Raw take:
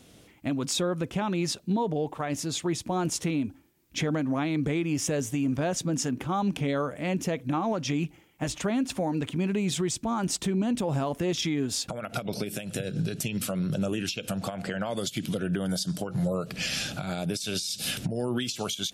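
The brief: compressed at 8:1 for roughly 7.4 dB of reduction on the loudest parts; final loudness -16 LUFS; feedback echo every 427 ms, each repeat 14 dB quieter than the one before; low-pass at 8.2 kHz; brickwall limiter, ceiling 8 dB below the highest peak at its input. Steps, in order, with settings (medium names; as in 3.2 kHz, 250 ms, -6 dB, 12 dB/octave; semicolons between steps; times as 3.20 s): low-pass 8.2 kHz; compression 8:1, threshold -31 dBFS; peak limiter -29 dBFS; feedback delay 427 ms, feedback 20%, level -14 dB; trim +21.5 dB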